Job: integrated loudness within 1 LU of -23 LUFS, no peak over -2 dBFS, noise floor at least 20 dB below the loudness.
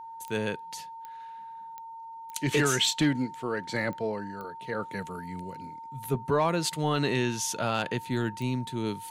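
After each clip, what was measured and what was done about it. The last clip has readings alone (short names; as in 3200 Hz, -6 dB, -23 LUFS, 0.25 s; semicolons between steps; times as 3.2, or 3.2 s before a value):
clicks 7; steady tone 910 Hz; tone level -40 dBFS; loudness -29.5 LUFS; peak -14.0 dBFS; loudness target -23.0 LUFS
-> de-click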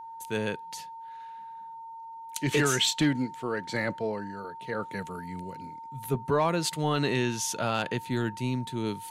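clicks 0; steady tone 910 Hz; tone level -40 dBFS
-> notch 910 Hz, Q 30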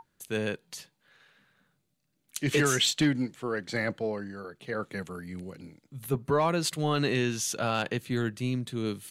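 steady tone none; loudness -29.5 LUFS; peak -14.0 dBFS; loudness target -23.0 LUFS
-> gain +6.5 dB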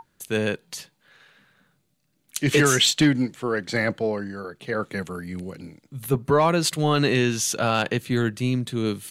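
loudness -23.0 LUFS; peak -7.5 dBFS; noise floor -69 dBFS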